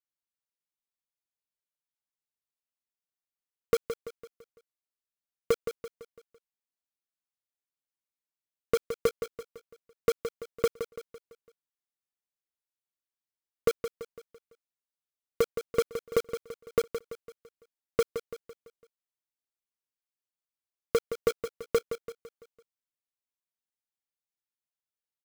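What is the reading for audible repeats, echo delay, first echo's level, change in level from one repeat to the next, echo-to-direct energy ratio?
4, 0.168 s, -9.5 dB, -6.5 dB, -8.5 dB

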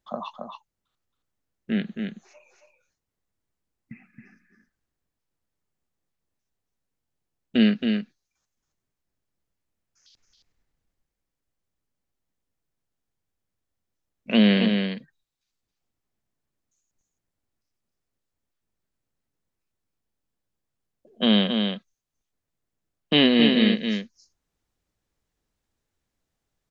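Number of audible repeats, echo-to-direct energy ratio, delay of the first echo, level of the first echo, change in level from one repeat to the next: 1, -5.5 dB, 0.272 s, -5.5 dB, no steady repeat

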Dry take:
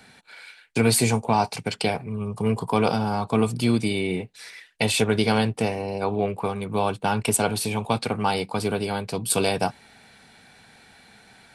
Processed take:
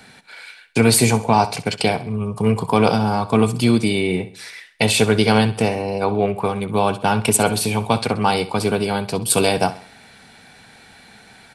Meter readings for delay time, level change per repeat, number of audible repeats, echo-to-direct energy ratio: 65 ms, -8.0 dB, 3, -14.5 dB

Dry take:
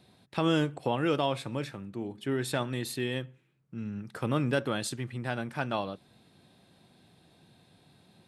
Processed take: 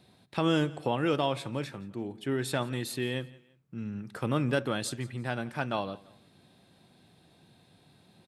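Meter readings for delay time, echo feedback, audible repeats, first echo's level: 0.17 s, 33%, 2, -21.5 dB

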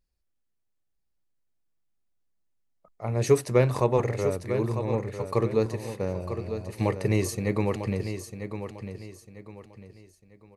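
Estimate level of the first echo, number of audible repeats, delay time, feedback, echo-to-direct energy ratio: -9.0 dB, 3, 0.949 s, 33%, -8.5 dB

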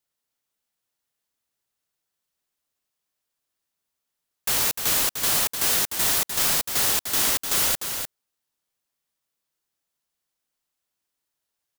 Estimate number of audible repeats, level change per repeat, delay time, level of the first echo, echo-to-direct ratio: 1, no steady repeat, 0.301 s, -7.0 dB, -7.0 dB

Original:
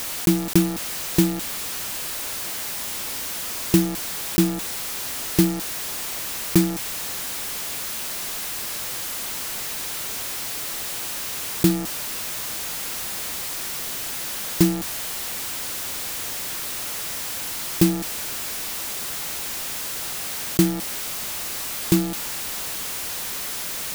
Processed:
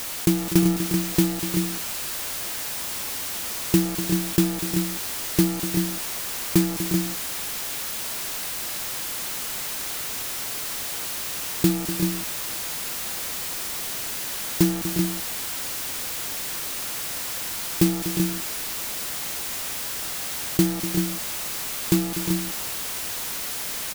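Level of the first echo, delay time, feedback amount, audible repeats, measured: -11.5 dB, 0.245 s, no steady repeat, 2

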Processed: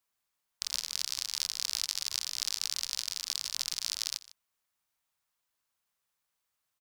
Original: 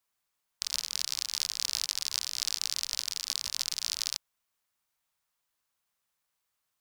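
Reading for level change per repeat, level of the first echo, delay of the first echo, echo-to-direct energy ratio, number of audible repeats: no steady repeat, -19.0 dB, 0.153 s, -19.0 dB, 1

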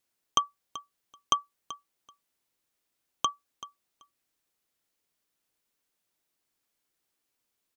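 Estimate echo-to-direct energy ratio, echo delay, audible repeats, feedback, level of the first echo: -16.0 dB, 0.383 s, 2, 15%, -16.0 dB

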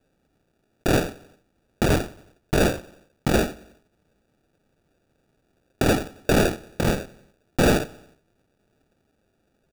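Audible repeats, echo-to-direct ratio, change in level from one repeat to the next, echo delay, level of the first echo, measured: 3, -21.0 dB, -5.0 dB, 90 ms, -22.5 dB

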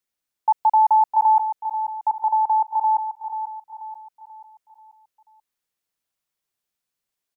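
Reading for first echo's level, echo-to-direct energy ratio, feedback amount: -9.0 dB, -8.0 dB, 44%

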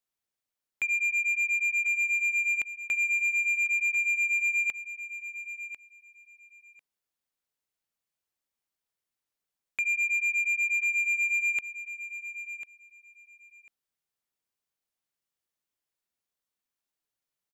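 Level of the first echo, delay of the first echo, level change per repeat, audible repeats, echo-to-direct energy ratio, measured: -12.0 dB, 1.046 s, -15.5 dB, 2, -12.0 dB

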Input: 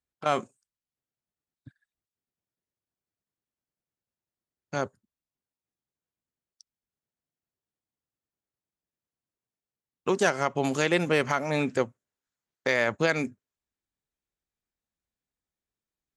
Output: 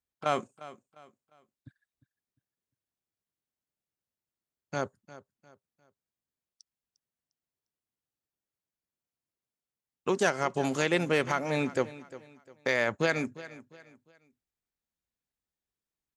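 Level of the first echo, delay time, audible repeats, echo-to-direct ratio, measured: -17.0 dB, 0.352 s, 2, -16.5 dB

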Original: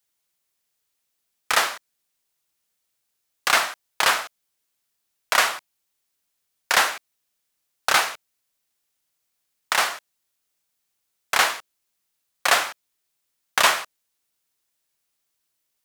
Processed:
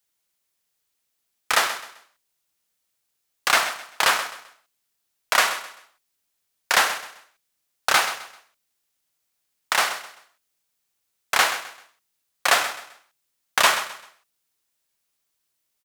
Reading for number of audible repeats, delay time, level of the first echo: 3, 0.13 s, -13.0 dB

